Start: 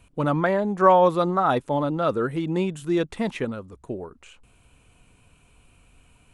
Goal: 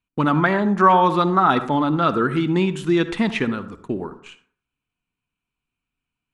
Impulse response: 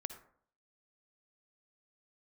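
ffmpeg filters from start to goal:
-filter_complex "[0:a]agate=range=-34dB:threshold=-47dB:ratio=16:detection=peak,equalizer=f=550:t=o:w=0.91:g=-12.5,acompressor=threshold=-30dB:ratio=1.5,asplit=2[a][b];[b]highpass=180,lowpass=5.8k[c];[1:a]atrim=start_sample=2205,lowshelf=f=140:g=4.5[d];[c][d]afir=irnorm=-1:irlink=0,volume=6.5dB[e];[a][e]amix=inputs=2:normalize=0,volume=3.5dB"

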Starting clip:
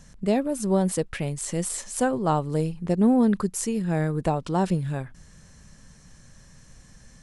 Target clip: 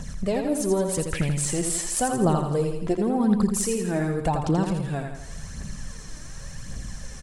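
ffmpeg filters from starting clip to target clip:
-filter_complex "[0:a]acompressor=threshold=-40dB:ratio=2,aphaser=in_gain=1:out_gain=1:delay=3.4:decay=0.56:speed=0.89:type=triangular,asplit=2[a][b];[b]aecho=0:1:83|166|249|332|415|498:0.501|0.261|0.136|0.0705|0.0366|0.0191[c];[a][c]amix=inputs=2:normalize=0,volume=9dB"

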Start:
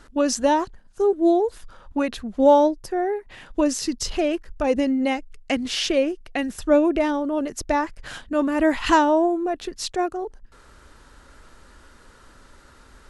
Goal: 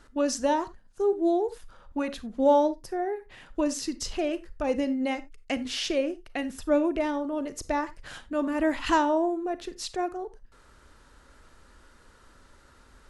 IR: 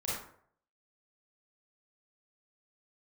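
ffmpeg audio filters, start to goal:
-filter_complex "[0:a]asplit=2[a][b];[1:a]atrim=start_sample=2205,atrim=end_sample=4410[c];[b][c]afir=irnorm=-1:irlink=0,volume=-15.5dB[d];[a][d]amix=inputs=2:normalize=0,volume=-7dB"

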